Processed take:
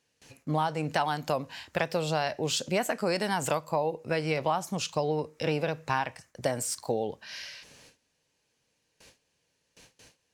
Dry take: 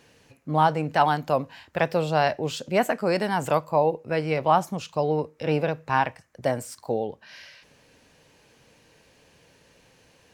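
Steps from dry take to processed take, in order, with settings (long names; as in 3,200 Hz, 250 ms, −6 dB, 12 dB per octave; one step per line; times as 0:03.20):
noise gate with hold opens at −46 dBFS
parametric band 7,300 Hz +9 dB 2.4 octaves
downward compressor 6 to 1, threshold −24 dBFS, peak gain reduction 10.5 dB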